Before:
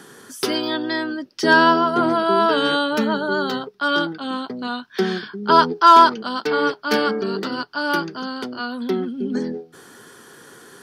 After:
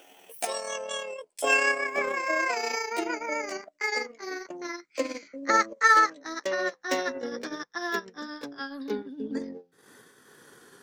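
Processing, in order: gliding pitch shift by +10.5 st ending unshifted; transient shaper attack +3 dB, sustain -8 dB; gain -9 dB

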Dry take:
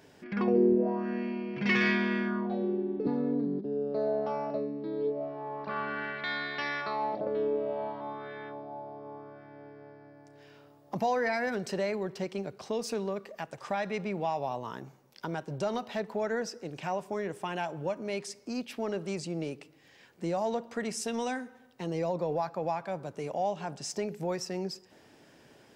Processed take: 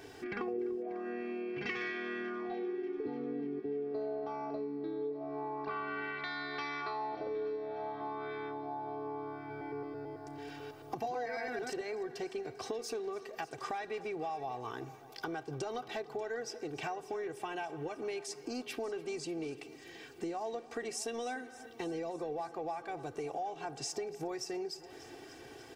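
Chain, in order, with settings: 9.39–11.81 reverse delay 0.11 s, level -0.5 dB; comb 2.6 ms, depth 86%; compressor 5:1, threshold -41 dBFS, peak gain reduction 21 dB; multi-head echo 0.294 s, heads first and second, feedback 62%, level -21 dB; gain +3.5 dB

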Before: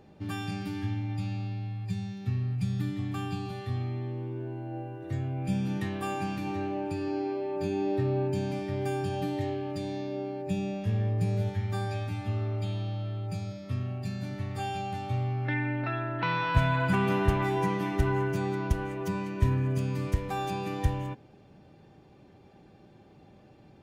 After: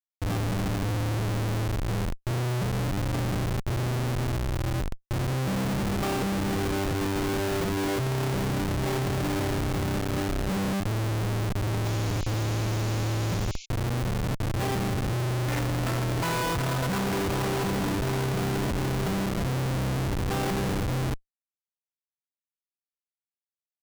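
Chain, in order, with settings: Schmitt trigger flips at -32 dBFS; painted sound noise, 11.85–13.66, 2100–7300 Hz -49 dBFS; gain +4 dB

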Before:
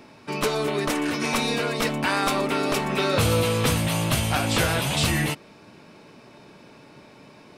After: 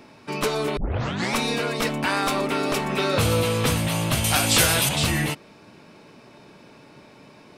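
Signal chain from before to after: 0.77 tape start 0.58 s; 2.22–2.91 overloaded stage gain 15.5 dB; 4.24–4.89 high shelf 3200 Hz +12 dB

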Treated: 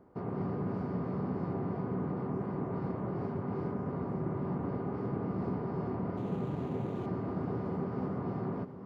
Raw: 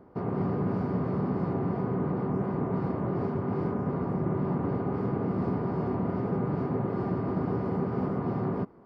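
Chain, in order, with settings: 6.17–7.06 median filter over 25 samples; diffused feedback echo 0.676 s, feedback 49%, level -12.5 dB; gain -6 dB

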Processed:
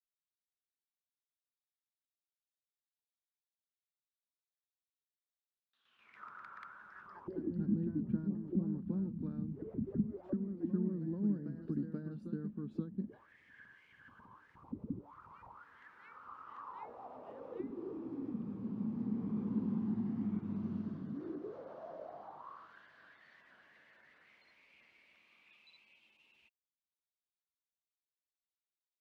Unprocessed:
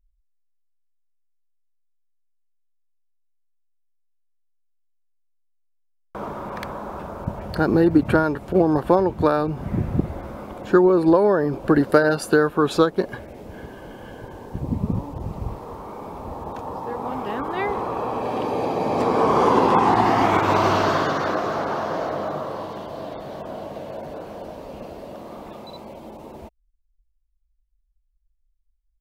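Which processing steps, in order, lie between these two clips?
echoes that change speed 0.188 s, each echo +1 st, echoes 3, each echo -6 dB; auto-wah 210–3800 Hz, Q 7.9, down, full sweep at -17.5 dBFS; passive tone stack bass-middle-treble 6-0-2; gain +14.5 dB

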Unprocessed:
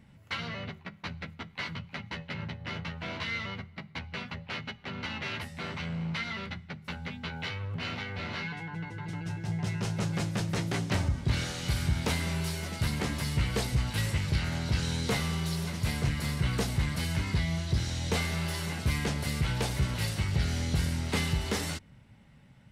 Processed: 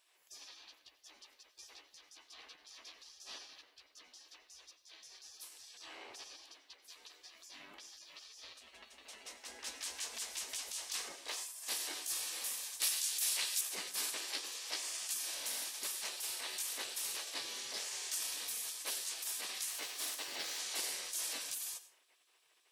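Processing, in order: spectral gate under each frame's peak -25 dB weak; HPF 67 Hz 12 dB/oct; high shelf 4200 Hz +11 dB; notch 1400 Hz, Q 10; 12.8–13.61 tilt shelf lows -6.5 dB, about 1200 Hz; reverb RT60 0.35 s, pre-delay 82 ms, DRR 14 dB; 19.7–20.59 decimation joined by straight lines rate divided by 2×; gain -4 dB

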